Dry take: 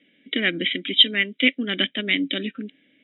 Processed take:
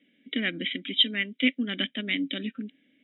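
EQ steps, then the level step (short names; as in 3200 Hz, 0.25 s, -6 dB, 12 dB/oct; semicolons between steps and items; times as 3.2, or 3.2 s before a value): bell 240 Hz +6.5 dB 0.54 oct; dynamic EQ 360 Hz, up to -4 dB, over -38 dBFS, Q 2.8; -7.0 dB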